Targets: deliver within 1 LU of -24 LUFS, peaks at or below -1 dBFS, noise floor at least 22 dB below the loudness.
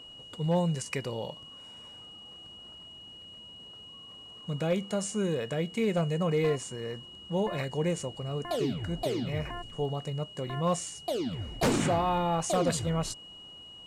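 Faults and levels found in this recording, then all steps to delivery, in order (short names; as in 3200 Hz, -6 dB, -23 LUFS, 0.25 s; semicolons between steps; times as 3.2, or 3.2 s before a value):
clipped 0.3%; flat tops at -20.0 dBFS; steady tone 2900 Hz; tone level -46 dBFS; loudness -31.0 LUFS; peak -20.0 dBFS; loudness target -24.0 LUFS
-> clip repair -20 dBFS; notch 2900 Hz, Q 30; gain +7 dB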